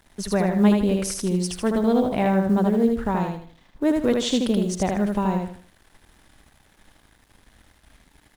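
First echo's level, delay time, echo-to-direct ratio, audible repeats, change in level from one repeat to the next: -3.5 dB, 78 ms, -3.0 dB, 4, -9.5 dB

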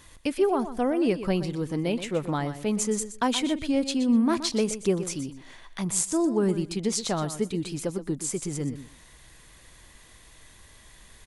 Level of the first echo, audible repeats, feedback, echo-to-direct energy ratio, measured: -12.0 dB, 2, 17%, -12.0 dB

